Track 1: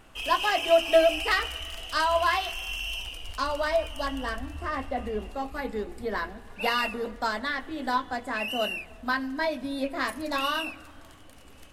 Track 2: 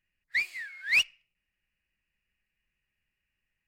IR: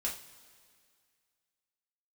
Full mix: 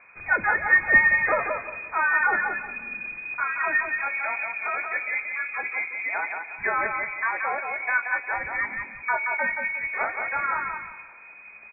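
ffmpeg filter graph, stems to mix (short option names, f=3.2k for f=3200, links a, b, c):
-filter_complex "[0:a]equalizer=f=550:w=6.5:g=-11.5,volume=2.5dB,asplit=2[a][b];[b]volume=-5dB[c];[1:a]volume=-5.5dB,asplit=2[d][e];[e]volume=-11dB[f];[2:a]atrim=start_sample=2205[g];[f][g]afir=irnorm=-1:irlink=0[h];[c]aecho=0:1:177|354|531|708:1|0.26|0.0676|0.0176[i];[a][d][h][i]amix=inputs=4:normalize=0,lowpass=f=2.1k:t=q:w=0.5098,lowpass=f=2.1k:t=q:w=0.6013,lowpass=f=2.1k:t=q:w=0.9,lowpass=f=2.1k:t=q:w=2.563,afreqshift=-2500"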